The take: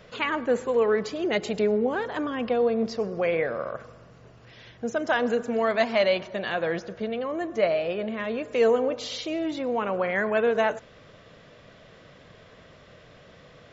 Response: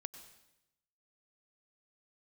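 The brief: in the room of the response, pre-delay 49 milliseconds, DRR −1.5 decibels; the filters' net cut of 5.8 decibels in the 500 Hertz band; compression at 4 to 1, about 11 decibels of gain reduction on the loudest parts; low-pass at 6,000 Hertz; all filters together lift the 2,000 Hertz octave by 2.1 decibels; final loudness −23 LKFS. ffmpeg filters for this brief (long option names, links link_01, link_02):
-filter_complex "[0:a]lowpass=6000,equalizer=frequency=500:width_type=o:gain=-7,equalizer=frequency=2000:width_type=o:gain=3,acompressor=threshold=-34dB:ratio=4,asplit=2[link_01][link_02];[1:a]atrim=start_sample=2205,adelay=49[link_03];[link_02][link_03]afir=irnorm=-1:irlink=0,volume=5dB[link_04];[link_01][link_04]amix=inputs=2:normalize=0,volume=10dB"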